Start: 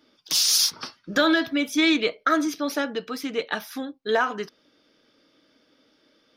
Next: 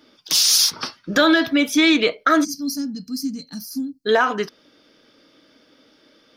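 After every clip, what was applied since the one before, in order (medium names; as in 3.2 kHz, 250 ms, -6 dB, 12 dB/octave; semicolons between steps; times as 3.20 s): time-frequency box 2.44–4.05 s, 300–4100 Hz -28 dB; in parallel at +2.5 dB: peak limiter -17 dBFS, peak gain reduction 8 dB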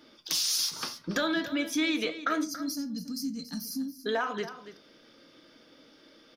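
compression 2:1, threshold -32 dBFS, peak gain reduction 11.5 dB; delay 281 ms -13.5 dB; reverberation RT60 0.40 s, pre-delay 6 ms, DRR 11 dB; trim -2.5 dB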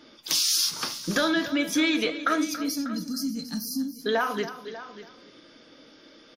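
delay 593 ms -15 dB; trim +4.5 dB; WMA 64 kbps 44.1 kHz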